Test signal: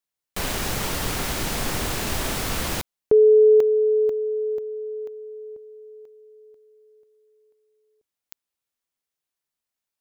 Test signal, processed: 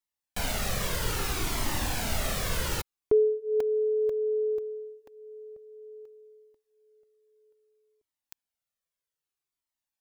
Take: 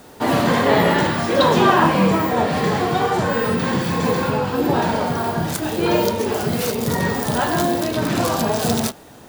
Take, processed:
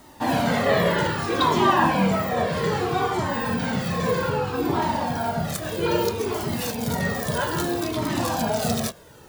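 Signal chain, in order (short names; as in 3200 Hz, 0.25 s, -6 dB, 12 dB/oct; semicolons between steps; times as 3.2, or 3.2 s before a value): cascading flanger falling 0.62 Hz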